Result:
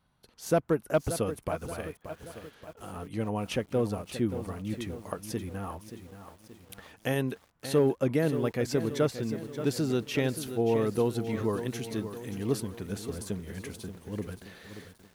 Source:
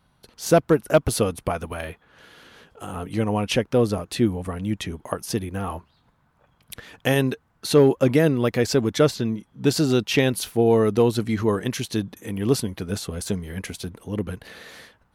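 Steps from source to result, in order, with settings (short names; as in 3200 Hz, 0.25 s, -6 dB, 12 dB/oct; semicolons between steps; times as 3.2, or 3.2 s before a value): dynamic EQ 4200 Hz, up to -4 dB, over -44 dBFS, Q 0.87; lo-fi delay 0.578 s, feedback 55%, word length 7-bit, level -10.5 dB; gain -8.5 dB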